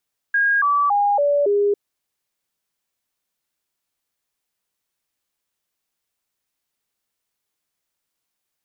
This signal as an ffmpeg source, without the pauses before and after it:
ffmpeg -f lavfi -i "aevalsrc='0.188*clip(min(mod(t,0.28),0.28-mod(t,0.28))/0.005,0,1)*sin(2*PI*1630*pow(2,-floor(t/0.28)/2)*mod(t,0.28))':duration=1.4:sample_rate=44100" out.wav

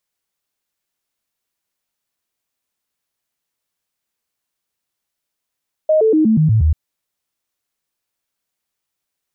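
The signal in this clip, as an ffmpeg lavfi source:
ffmpeg -f lavfi -i "aevalsrc='0.335*clip(min(mod(t,0.12),0.12-mod(t,0.12))/0.005,0,1)*sin(2*PI*623*pow(2,-floor(t/0.12)/2)*mod(t,0.12))':duration=0.84:sample_rate=44100" out.wav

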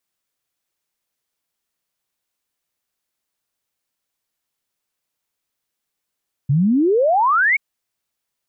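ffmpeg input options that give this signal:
ffmpeg -f lavfi -i "aevalsrc='0.237*clip(min(t,1.08-t)/0.01,0,1)*sin(2*PI*130*1.08/log(2300/130)*(exp(log(2300/130)*t/1.08)-1))':duration=1.08:sample_rate=44100" out.wav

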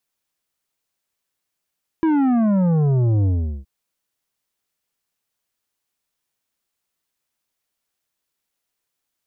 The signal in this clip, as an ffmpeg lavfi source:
ffmpeg -f lavfi -i "aevalsrc='0.168*clip((1.62-t)/0.4,0,1)*tanh(2.99*sin(2*PI*330*1.62/log(65/330)*(exp(log(65/330)*t/1.62)-1)))/tanh(2.99)':duration=1.62:sample_rate=44100" out.wav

